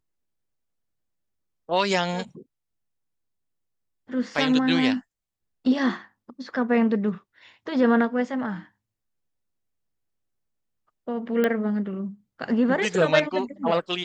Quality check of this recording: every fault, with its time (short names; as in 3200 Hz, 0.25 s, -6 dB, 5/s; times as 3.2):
11.44 pop -12 dBFS